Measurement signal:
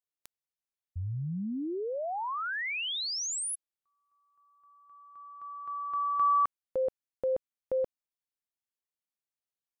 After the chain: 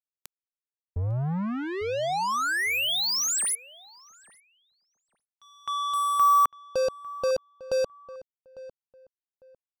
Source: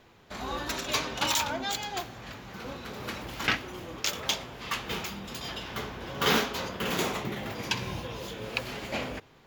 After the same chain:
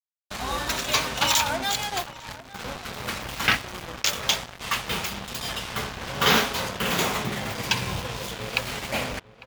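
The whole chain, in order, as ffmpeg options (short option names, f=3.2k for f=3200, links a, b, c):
-filter_complex "[0:a]acrusher=bits=5:mix=0:aa=0.5,equalizer=f=330:w=1.4:g=-6,asplit=2[a][b];[b]adelay=851,lowpass=f=1.7k:p=1,volume=-17dB,asplit=2[c][d];[d]adelay=851,lowpass=f=1.7k:p=1,volume=0.25[e];[a][c][e]amix=inputs=3:normalize=0,volume=6dB"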